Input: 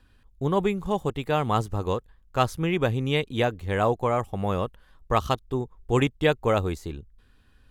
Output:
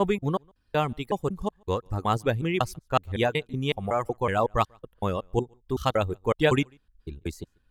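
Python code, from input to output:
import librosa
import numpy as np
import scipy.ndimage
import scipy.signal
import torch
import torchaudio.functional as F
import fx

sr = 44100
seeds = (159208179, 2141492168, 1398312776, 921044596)

y = fx.block_reorder(x, sr, ms=186.0, group=4)
y = y + 10.0 ** (-21.5 / 20.0) * np.pad(y, (int(143 * sr / 1000.0), 0))[:len(y)]
y = fx.dereverb_blind(y, sr, rt60_s=1.6)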